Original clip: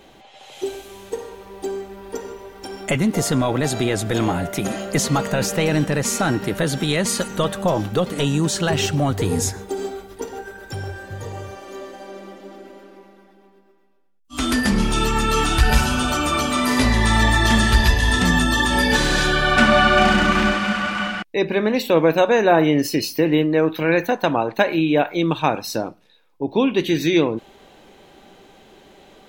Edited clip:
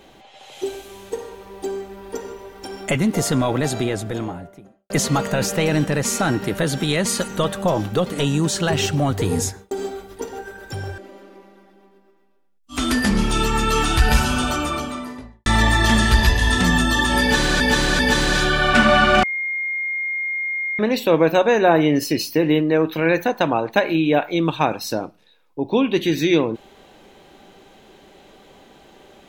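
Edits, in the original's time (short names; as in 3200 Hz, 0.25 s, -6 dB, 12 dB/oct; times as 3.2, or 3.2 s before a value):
3.51–4.9 studio fade out
9.4–9.71 fade out
10.98–12.59 cut
15.96–17.07 studio fade out
18.82–19.21 loop, 3 plays
20.06–21.62 bleep 2130 Hz -21.5 dBFS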